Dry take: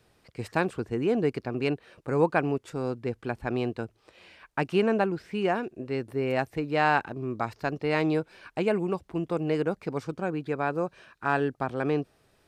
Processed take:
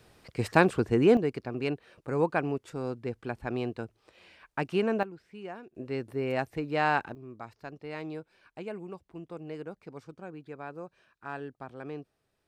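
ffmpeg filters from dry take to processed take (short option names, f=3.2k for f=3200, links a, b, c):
-af "asetnsamples=n=441:p=0,asendcmd='1.17 volume volume -3.5dB;5.03 volume volume -15dB;5.75 volume volume -3dB;7.15 volume volume -13dB',volume=5dB"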